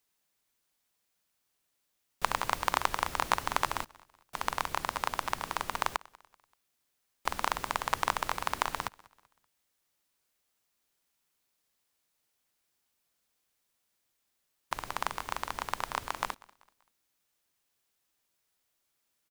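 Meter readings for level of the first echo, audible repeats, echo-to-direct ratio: −24.0 dB, 2, −23.5 dB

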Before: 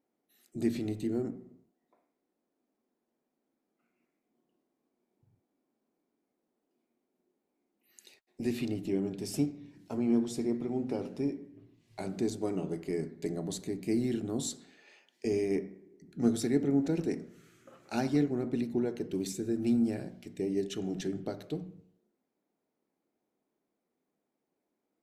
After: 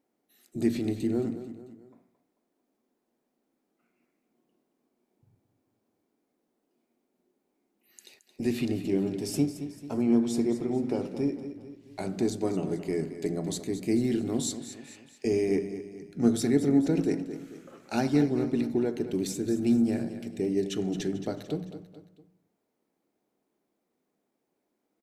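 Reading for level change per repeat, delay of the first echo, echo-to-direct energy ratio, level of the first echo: −6.5 dB, 221 ms, −11.0 dB, −12.0 dB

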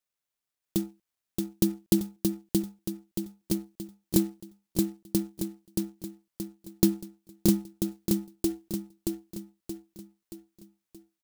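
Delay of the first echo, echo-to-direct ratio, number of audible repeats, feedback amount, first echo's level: 626 ms, −2.0 dB, 5, 46%, −3.0 dB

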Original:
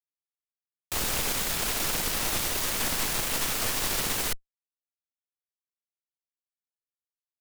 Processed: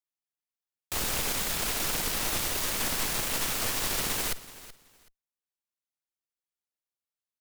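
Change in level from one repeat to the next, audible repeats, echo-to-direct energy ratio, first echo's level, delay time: −13.5 dB, 2, −17.0 dB, −17.0 dB, 377 ms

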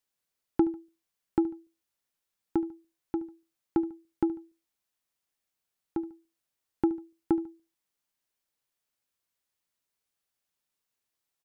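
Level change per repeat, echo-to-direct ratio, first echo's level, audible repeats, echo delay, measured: −8.0 dB, −17.5 dB, −18.0 dB, 2, 73 ms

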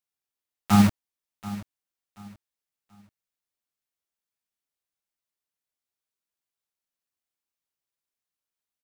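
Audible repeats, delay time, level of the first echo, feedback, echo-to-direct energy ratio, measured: 2, 732 ms, −17.0 dB, 29%, −16.5 dB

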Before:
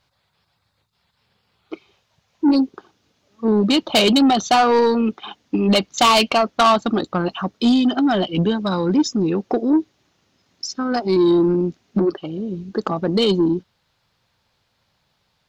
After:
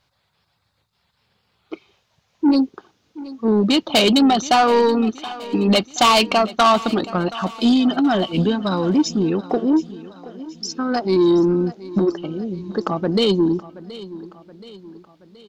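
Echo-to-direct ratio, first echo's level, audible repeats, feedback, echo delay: −16.0 dB, −17.5 dB, 4, 52%, 725 ms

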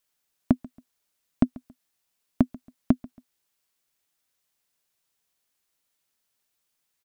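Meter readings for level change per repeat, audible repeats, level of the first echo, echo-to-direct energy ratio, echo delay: −10.5 dB, 2, −22.0 dB, −21.5 dB, 138 ms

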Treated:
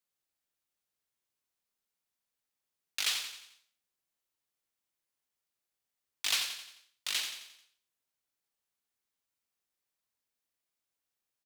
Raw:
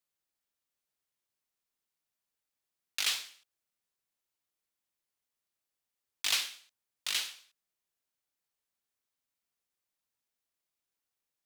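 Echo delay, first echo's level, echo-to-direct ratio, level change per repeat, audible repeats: 88 ms, −8.0 dB, −7.0 dB, −6.5 dB, 5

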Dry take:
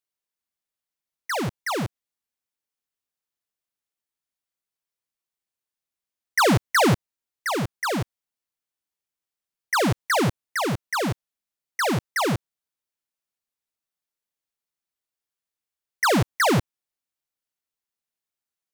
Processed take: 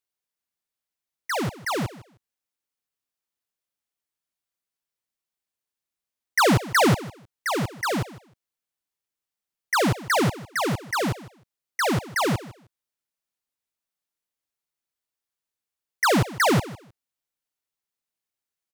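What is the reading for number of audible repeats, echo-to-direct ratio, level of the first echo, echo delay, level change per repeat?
2, −17.5 dB, −17.5 dB, 155 ms, −15.0 dB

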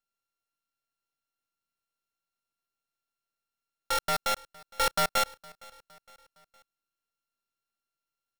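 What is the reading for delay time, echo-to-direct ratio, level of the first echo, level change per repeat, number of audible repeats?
462 ms, −22.5 dB, −23.5 dB, −6.0 dB, 2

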